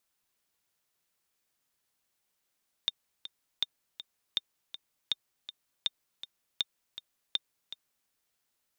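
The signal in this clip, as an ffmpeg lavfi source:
-f lavfi -i "aevalsrc='pow(10,(-14.5-13*gte(mod(t,2*60/161),60/161))/20)*sin(2*PI*3630*mod(t,60/161))*exp(-6.91*mod(t,60/161)/0.03)':d=5.21:s=44100"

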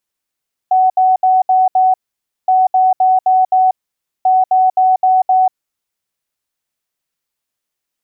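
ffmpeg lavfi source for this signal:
-f lavfi -i "aevalsrc='0.422*sin(2*PI*748*t)*clip(min(mod(mod(t,1.77),0.26),0.19-mod(mod(t,1.77),0.26))/0.005,0,1)*lt(mod(t,1.77),1.3)':d=5.31:s=44100"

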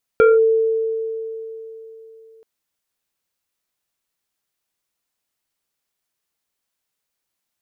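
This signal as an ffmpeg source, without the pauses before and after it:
-f lavfi -i "aevalsrc='0.422*pow(10,-3*t/3.51)*sin(2*PI*447*t+0.87*clip(1-t/0.19,0,1)*sin(2*PI*2.1*447*t))':d=2.23:s=44100"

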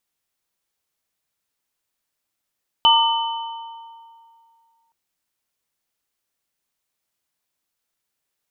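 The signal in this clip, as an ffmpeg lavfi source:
-f lavfi -i "aevalsrc='0.237*pow(10,-3*t/2.35)*sin(2*PI*916*t)+0.0841*pow(10,-3*t/1.78)*sin(2*PI*1190*t)+0.266*pow(10,-3*t/1.45)*sin(2*PI*3020*t)':d=2.07:s=44100"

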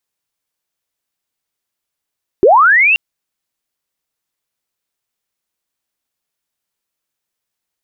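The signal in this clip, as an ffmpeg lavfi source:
-f lavfi -i "aevalsrc='pow(10,(-3.5-4.5*t/0.53)/20)*sin(2*PI*(340*t+2460*t*t/(2*0.53)))':d=0.53:s=44100"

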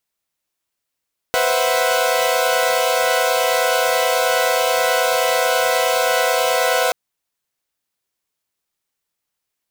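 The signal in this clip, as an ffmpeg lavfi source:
-f lavfi -i "aevalsrc='0.119*((2*mod(493.88*t,1)-1)+(2*mod(523.25*t,1)-1)+(2*mod(659.26*t,1)-1)+(2*mod(739.99*t,1)-1))':d=5.58:s=44100"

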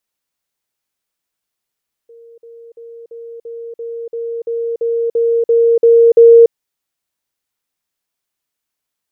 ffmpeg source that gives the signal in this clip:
-f lavfi -i "aevalsrc='pow(10,(-37.5+3*floor(t/0.34))/20)*sin(2*PI*464*t)*clip(min(mod(t,0.34),0.29-mod(t,0.34))/0.005,0,1)':d=4.42:s=44100"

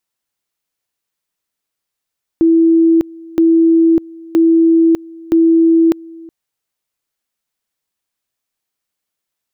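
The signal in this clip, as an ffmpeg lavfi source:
-f lavfi -i "aevalsrc='pow(10,(-6.5-24*gte(mod(t,0.97),0.6))/20)*sin(2*PI*329*t)':d=3.88:s=44100"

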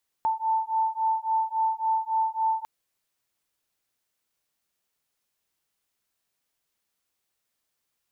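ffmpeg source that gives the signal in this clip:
-f lavfi -i "aevalsrc='0.0501*(sin(2*PI*886*t)+sin(2*PI*889.6*t))':d=2.4:s=44100"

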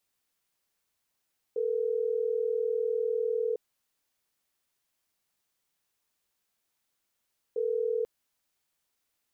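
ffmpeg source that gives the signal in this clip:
-f lavfi -i "aevalsrc='0.0355*(sin(2*PI*440*t)+sin(2*PI*480*t))*clip(min(mod(t,6),2-mod(t,6))/0.005,0,1)':d=6.49:s=44100"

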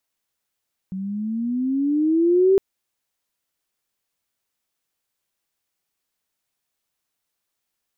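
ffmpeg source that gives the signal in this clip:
-f lavfi -i "aevalsrc='pow(10,(-11.5+14.5*(t/1.66-1))/20)*sin(2*PI*186*1.66/(13*log(2)/12)*(exp(13*log(2)/12*t/1.66)-1))':d=1.66:s=44100"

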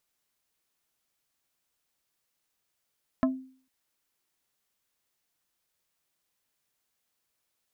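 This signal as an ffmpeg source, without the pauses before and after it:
-f lavfi -i "aevalsrc='0.112*pow(10,-3*t/0.47)*sin(2*PI*261*t)+0.0708*pow(10,-3*t/0.157)*sin(2*PI*652.5*t)+0.0447*pow(10,-3*t/0.089)*sin(2*PI*1044*t)+0.0282*pow(10,-3*t/0.068)*sin(2*PI*1305*t)+0.0178*pow(10,-3*t/0.05)*sin(2*PI*1696.5*t)':d=0.45:s=44100"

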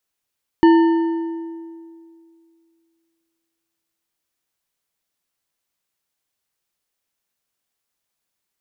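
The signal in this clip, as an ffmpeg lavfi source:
-f lavfi -i "aevalsrc='0.447*pow(10,-3*t/2.38)*sin(2*PI*331*t)+0.168*pow(10,-3*t/1.756)*sin(2*PI*912.6*t)+0.0631*pow(10,-3*t/1.435)*sin(2*PI*1788.7*t)+0.0237*pow(10,-3*t/1.234)*sin(2*PI*2956.8*t)+0.00891*pow(10,-3*t/1.094)*sin(2*PI*4415.5*t)':d=4.69:s=44100"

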